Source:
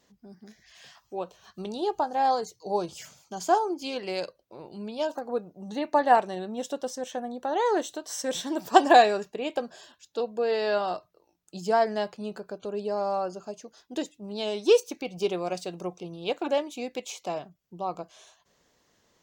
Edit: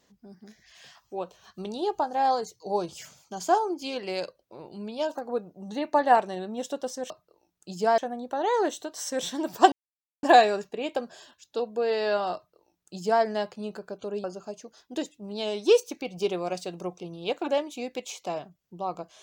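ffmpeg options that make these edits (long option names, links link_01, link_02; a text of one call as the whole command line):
ffmpeg -i in.wav -filter_complex "[0:a]asplit=5[link_01][link_02][link_03][link_04][link_05];[link_01]atrim=end=7.102[link_06];[link_02]atrim=start=10.958:end=11.842[link_07];[link_03]atrim=start=7.098:end=8.84,asetpts=PTS-STARTPTS,afade=type=out:start_time=1.738:duration=0.004:curve=hsin,apad=pad_dur=0.51[link_08];[link_04]atrim=start=8.84:end=12.852,asetpts=PTS-STARTPTS,afade=type=in:duration=0.004:curve=hsin[link_09];[link_05]atrim=start=13.238[link_10];[link_06][link_07]acrossfade=duration=0.004:curve1=hsin:curve2=hsin[link_11];[link_08][link_09]concat=n=2:v=0:a=1[link_12];[link_11][link_12]acrossfade=duration=0.004:curve1=hsin:curve2=hsin[link_13];[link_13][link_10]acrossfade=duration=0.004:curve1=hsin:curve2=hsin" out.wav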